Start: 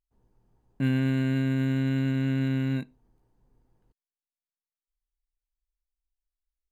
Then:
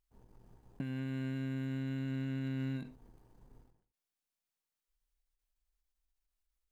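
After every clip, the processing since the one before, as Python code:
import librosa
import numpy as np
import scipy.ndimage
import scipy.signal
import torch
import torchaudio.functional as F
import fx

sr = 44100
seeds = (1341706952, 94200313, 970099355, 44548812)

y = fx.over_compress(x, sr, threshold_db=-36.0, ratio=-1.0)
y = fx.leveller(y, sr, passes=1)
y = fx.end_taper(y, sr, db_per_s=110.0)
y = F.gain(torch.from_numpy(y), -4.5).numpy()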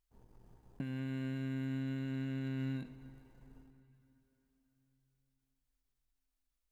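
y = fx.rev_plate(x, sr, seeds[0], rt60_s=4.3, hf_ratio=0.75, predelay_ms=0, drr_db=14.5)
y = F.gain(torch.from_numpy(y), -1.0).numpy()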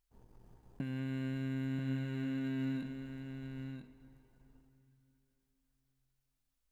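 y = x + 10.0 ** (-7.0 / 20.0) * np.pad(x, (int(987 * sr / 1000.0), 0))[:len(x)]
y = F.gain(torch.from_numpy(y), 1.0).numpy()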